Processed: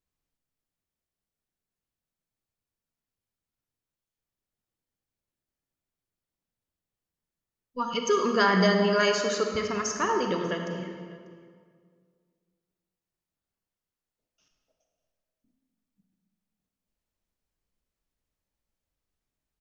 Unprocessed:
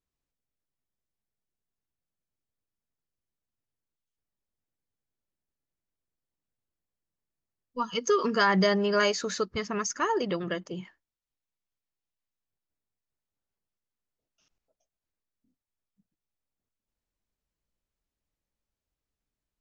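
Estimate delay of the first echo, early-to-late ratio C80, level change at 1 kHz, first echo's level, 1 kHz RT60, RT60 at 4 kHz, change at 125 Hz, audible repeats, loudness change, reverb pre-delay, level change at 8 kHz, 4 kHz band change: 593 ms, 5.0 dB, +1.5 dB, -24.0 dB, 1.9 s, 1.6 s, +2.5 dB, 1, +1.5 dB, 32 ms, no reading, +1.5 dB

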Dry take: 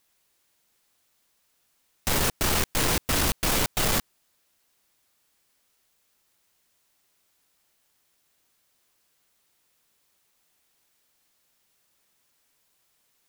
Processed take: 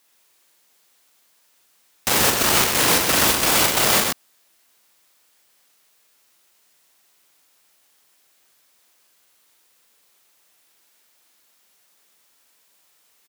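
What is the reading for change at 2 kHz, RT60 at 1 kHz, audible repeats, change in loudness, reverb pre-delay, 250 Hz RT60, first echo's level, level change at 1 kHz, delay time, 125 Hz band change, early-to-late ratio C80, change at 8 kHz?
+8.5 dB, no reverb, 2, +8.0 dB, no reverb, no reverb, -6.0 dB, +8.5 dB, 41 ms, -0.5 dB, no reverb, +9.0 dB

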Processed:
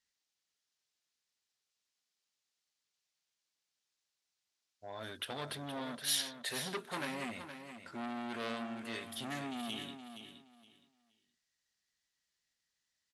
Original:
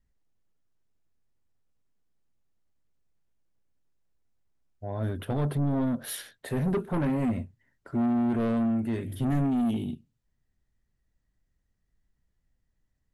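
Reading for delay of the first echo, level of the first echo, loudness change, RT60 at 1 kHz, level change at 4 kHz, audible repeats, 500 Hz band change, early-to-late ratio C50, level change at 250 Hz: 469 ms, -9.5 dB, -11.0 dB, no reverb, +8.5 dB, 2, -11.0 dB, no reverb, -17.0 dB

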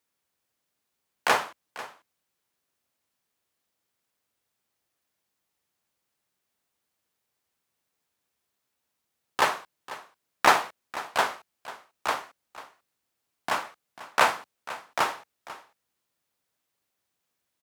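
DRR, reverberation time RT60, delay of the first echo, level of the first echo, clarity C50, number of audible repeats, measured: no reverb, no reverb, 493 ms, -16.5 dB, no reverb, 1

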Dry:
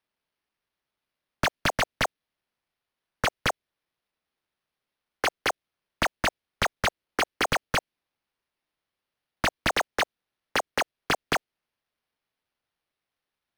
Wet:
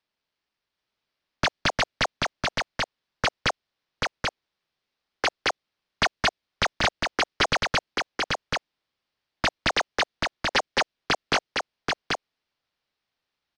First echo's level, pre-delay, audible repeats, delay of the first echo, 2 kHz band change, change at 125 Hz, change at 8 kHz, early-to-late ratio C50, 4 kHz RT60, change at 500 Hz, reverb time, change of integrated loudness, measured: -3.0 dB, no reverb, 1, 784 ms, +2.5 dB, +2.0 dB, +1.0 dB, no reverb, no reverb, +2.0 dB, no reverb, +1.5 dB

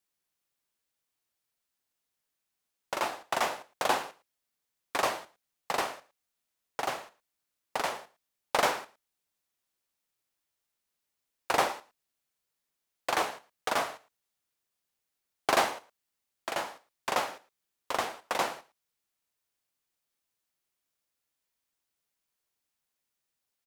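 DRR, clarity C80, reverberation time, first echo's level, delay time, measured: no reverb, no reverb, no reverb, -20.0 dB, 111 ms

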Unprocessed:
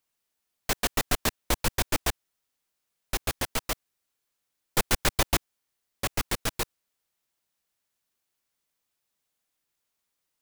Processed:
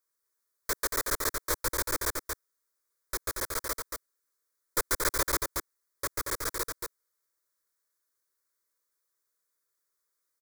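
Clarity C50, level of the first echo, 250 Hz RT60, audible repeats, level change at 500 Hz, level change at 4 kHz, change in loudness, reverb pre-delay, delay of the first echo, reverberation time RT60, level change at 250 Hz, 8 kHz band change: no reverb, -4.5 dB, no reverb, 1, -2.0 dB, -6.0 dB, -2.0 dB, no reverb, 230 ms, no reverb, -7.5 dB, 0.0 dB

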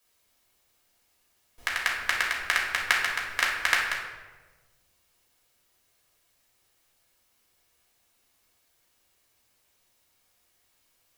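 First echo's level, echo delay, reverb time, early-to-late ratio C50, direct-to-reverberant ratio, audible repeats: no echo, no echo, 1.3 s, 2.5 dB, -4.0 dB, no echo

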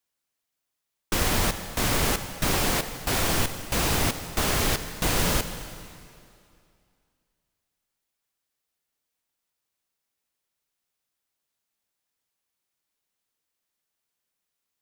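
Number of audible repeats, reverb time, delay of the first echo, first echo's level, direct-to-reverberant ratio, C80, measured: no echo, 2.4 s, no echo, no echo, 9.5 dB, 10.5 dB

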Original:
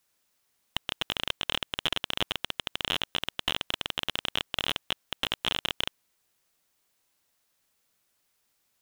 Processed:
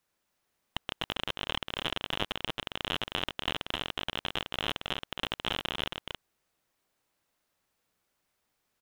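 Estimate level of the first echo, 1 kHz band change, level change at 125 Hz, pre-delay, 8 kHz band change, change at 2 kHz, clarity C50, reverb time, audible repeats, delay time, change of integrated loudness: -5.0 dB, 0.0 dB, +1.5 dB, no reverb, -7.0 dB, -2.5 dB, no reverb, no reverb, 1, 272 ms, -3.5 dB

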